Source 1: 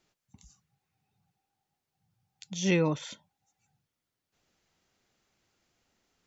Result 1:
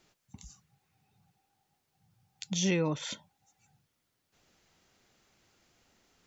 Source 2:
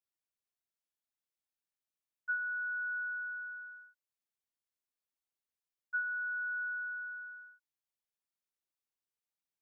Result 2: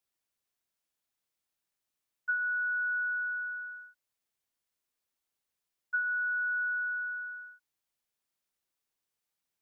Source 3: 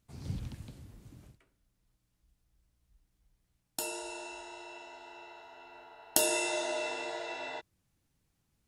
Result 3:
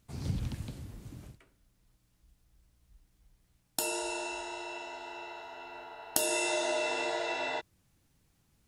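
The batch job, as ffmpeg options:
-af "acompressor=threshold=0.0178:ratio=3,volume=2.11"

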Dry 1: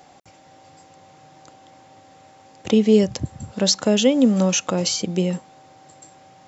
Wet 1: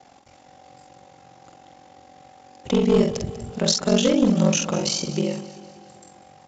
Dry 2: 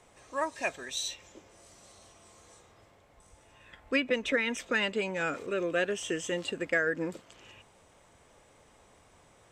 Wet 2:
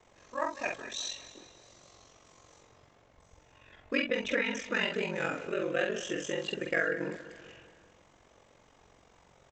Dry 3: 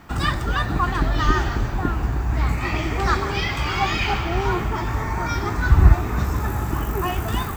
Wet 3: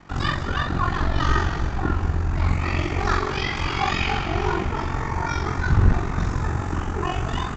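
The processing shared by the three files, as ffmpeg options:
-filter_complex "[0:a]aeval=exprs='val(0)*sin(2*PI*23*n/s)':c=same,aresample=16000,asoftclip=type=hard:threshold=0.266,aresample=44100,asplit=2[s0][s1];[s1]adelay=48,volume=0.631[s2];[s0][s2]amix=inputs=2:normalize=0,aecho=1:1:193|386|579|772|965:0.168|0.0907|0.049|0.0264|0.0143"

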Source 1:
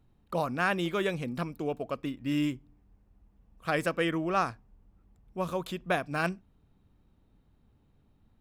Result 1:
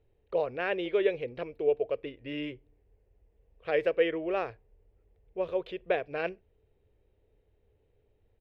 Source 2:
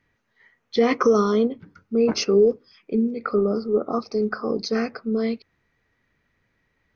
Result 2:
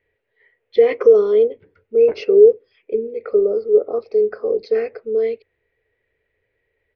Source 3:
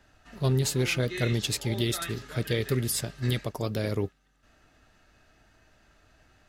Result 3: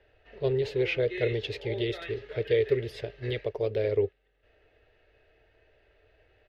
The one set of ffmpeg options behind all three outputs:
-af "firequalizer=gain_entry='entry(100,0);entry(160,-11);entry(250,-11);entry(430,13);entry(720,0);entry(1200,-9);entry(1900,3);entry(2800,2);entry(7700,-29)':delay=0.05:min_phase=1,volume=0.668"

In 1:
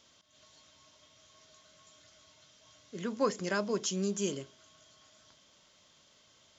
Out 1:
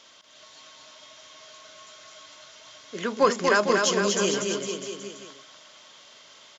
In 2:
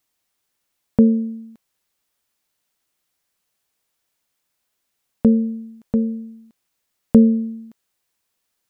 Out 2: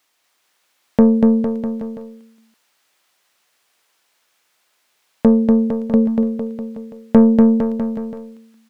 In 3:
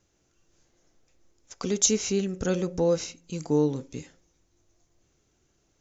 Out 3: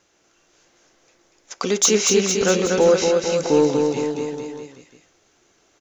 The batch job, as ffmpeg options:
-filter_complex "[0:a]lowshelf=f=140:g=-4,asplit=2[s0][s1];[s1]highpass=f=720:p=1,volume=7.94,asoftclip=type=tanh:threshold=0.794[s2];[s0][s2]amix=inputs=2:normalize=0,lowpass=f=3600:p=1,volume=0.501,aecho=1:1:240|456|650.4|825.4|982.8:0.631|0.398|0.251|0.158|0.1,volume=1.19"

